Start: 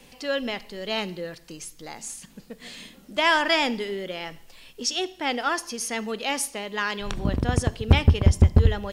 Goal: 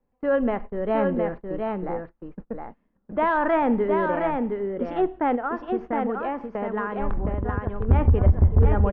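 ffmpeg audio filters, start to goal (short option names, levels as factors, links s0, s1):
-filter_complex "[0:a]lowpass=f=1400:w=0.5412,lowpass=f=1400:w=1.3066,agate=range=0.0316:threshold=0.00794:ratio=16:detection=peak,asplit=3[s0][s1][s2];[s0]afade=t=out:st=5.35:d=0.02[s3];[s1]acompressor=threshold=0.0224:ratio=6,afade=t=in:st=5.35:d=0.02,afade=t=out:st=7.88:d=0.02[s4];[s2]afade=t=in:st=7.88:d=0.02[s5];[s3][s4][s5]amix=inputs=3:normalize=0,equalizer=f=140:t=o:w=0.42:g=-6.5,acontrast=86,alimiter=limit=0.188:level=0:latency=1:release=39,lowshelf=f=91:g=7.5,aecho=1:1:715:0.596"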